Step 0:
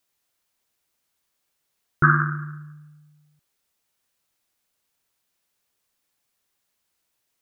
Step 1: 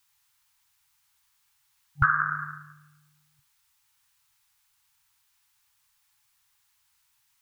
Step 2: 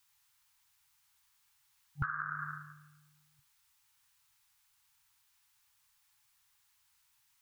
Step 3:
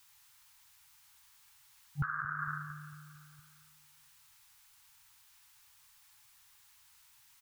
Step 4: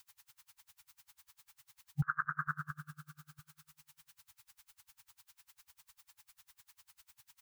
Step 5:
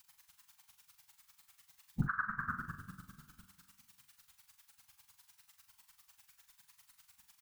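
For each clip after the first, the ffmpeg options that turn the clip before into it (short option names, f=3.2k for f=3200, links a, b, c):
-af "acompressor=threshold=-23dB:ratio=6,afftfilt=real='re*(1-between(b*sr/4096,140,790))':imag='im*(1-between(b*sr/4096,140,790))':win_size=4096:overlap=0.75,volume=6dB"
-af "acompressor=threshold=-30dB:ratio=8,volume=-2.5dB"
-af "alimiter=level_in=10.5dB:limit=-24dB:level=0:latency=1:release=461,volume=-10.5dB,aecho=1:1:227|454|681|908|1135:0.141|0.0819|0.0475|0.0276|0.016,volume=9dB"
-af "aeval=exprs='val(0)*pow(10,-33*(0.5-0.5*cos(2*PI*10*n/s))/20)':c=same,volume=5.5dB"
-af "afftfilt=real='hypot(re,im)*cos(2*PI*random(0))':imag='hypot(re,im)*sin(2*PI*random(1))':win_size=512:overlap=0.75,aecho=1:1:41|62:0.422|0.178,volume=4.5dB"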